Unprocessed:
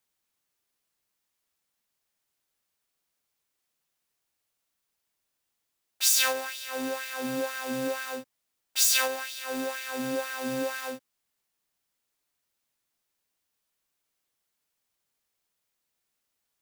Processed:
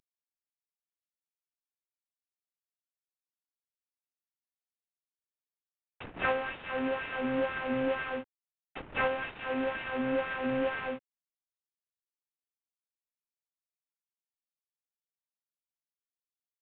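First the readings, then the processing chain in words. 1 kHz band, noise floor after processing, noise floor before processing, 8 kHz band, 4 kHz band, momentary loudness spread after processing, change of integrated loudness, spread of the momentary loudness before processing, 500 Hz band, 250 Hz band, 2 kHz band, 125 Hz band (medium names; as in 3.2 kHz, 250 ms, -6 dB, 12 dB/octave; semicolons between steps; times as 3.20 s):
+0.5 dB, under -85 dBFS, -81 dBFS, under -40 dB, -15.0 dB, 12 LU, -5.0 dB, 13 LU, +1.0 dB, +0.5 dB, -1.5 dB, +3.0 dB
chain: CVSD coder 16 kbps; trim +1.5 dB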